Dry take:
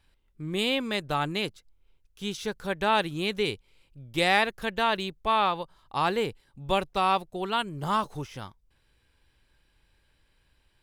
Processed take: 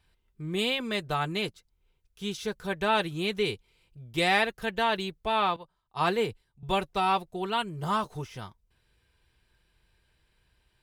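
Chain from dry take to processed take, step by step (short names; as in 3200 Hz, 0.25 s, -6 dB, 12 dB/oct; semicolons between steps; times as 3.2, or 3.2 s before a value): notch comb 280 Hz; 5.56–6.63 three-band expander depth 100%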